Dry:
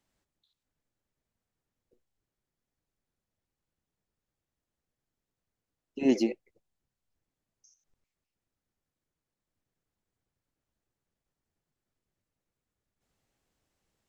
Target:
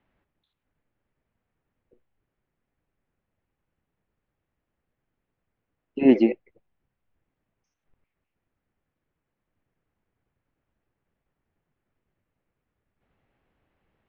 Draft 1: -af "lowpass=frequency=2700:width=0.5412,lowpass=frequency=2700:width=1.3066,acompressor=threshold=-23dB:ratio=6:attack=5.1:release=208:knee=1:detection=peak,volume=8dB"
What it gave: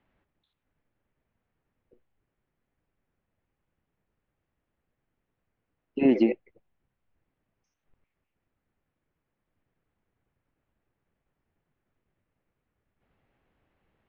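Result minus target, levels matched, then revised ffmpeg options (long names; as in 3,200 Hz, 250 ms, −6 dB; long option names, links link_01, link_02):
downward compressor: peak gain reduction +6.5 dB
-af "lowpass=frequency=2700:width=0.5412,lowpass=frequency=2700:width=1.3066,volume=8dB"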